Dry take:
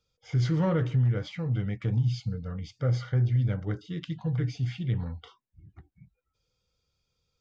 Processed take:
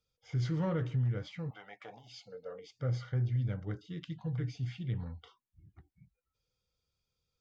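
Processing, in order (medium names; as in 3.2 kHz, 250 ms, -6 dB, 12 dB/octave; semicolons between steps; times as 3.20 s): 1.49–2.73 s: resonant high-pass 890 Hz -> 440 Hz, resonance Q 4.9; trim -7 dB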